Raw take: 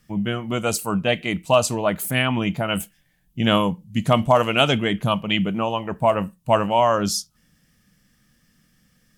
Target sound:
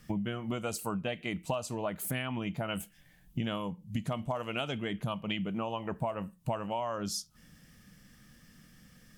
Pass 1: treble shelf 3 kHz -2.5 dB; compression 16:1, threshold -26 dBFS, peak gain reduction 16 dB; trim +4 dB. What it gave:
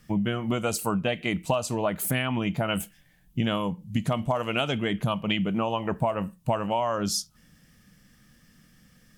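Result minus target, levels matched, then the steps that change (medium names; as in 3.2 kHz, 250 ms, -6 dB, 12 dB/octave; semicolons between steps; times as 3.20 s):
compression: peak gain reduction -8 dB
change: compression 16:1, threshold -34.5 dBFS, peak gain reduction 24 dB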